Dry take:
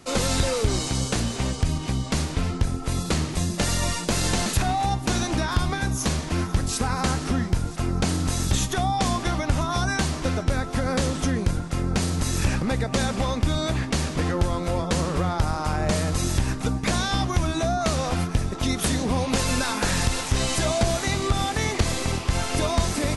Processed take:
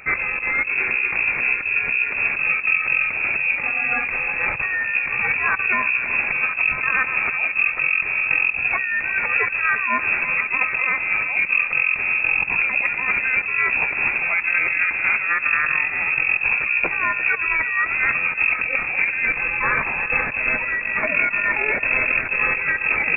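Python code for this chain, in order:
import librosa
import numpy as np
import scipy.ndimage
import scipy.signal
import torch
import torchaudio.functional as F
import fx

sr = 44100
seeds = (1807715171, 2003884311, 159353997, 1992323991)

y = fx.over_compress(x, sr, threshold_db=-26.0, ratio=-0.5)
y = fx.echo_feedback(y, sr, ms=347, feedback_pct=51, wet_db=-15)
y = fx.freq_invert(y, sr, carrier_hz=2600)
y = y * 10.0 ** (5.5 / 20.0)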